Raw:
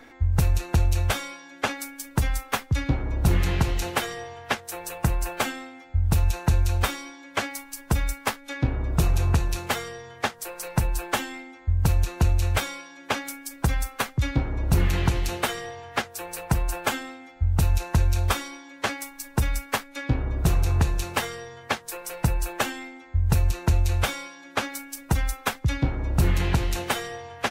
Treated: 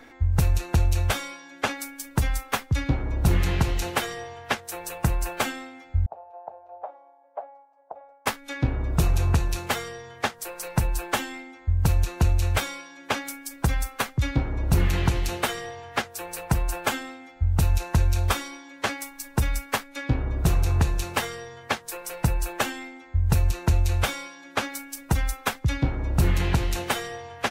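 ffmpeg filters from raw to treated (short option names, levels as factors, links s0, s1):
-filter_complex "[0:a]asettb=1/sr,asplit=3[s0][s1][s2];[s0]atrim=end=6.064[s3];[s1]atrim=start=6.06:end=8.26,asetpts=PTS-STARTPTS,afade=t=in:d=0.004:c=qsin,afade=t=out:st=2.196:d=0.004:c=qsin,asuperpass=centerf=690:order=4:qfactor=2.7[s4];[s2]atrim=start=8.256[s5];[s3][s4]acrossfade=d=0.004:c1=hsin:c2=qsin[s6];[s6][s5]acrossfade=d=0.004:c1=qsin:c2=hsin"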